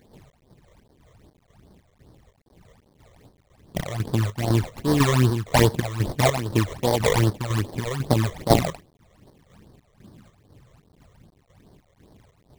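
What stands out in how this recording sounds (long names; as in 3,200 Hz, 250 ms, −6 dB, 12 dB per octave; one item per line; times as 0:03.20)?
aliases and images of a low sample rate 1,400 Hz, jitter 20%
chopped level 2 Hz, depth 60%, duty 60%
a quantiser's noise floor 10 bits, dither none
phaser sweep stages 12, 2.5 Hz, lowest notch 250–2,600 Hz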